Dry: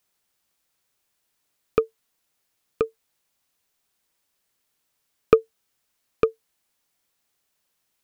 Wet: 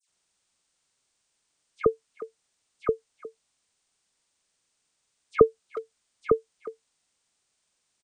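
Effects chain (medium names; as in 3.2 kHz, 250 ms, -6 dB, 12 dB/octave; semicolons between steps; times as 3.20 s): knee-point frequency compression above 1.7 kHz 1.5:1; phase dispersion lows, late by 84 ms, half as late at 2.2 kHz; speakerphone echo 360 ms, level -15 dB; trim -1 dB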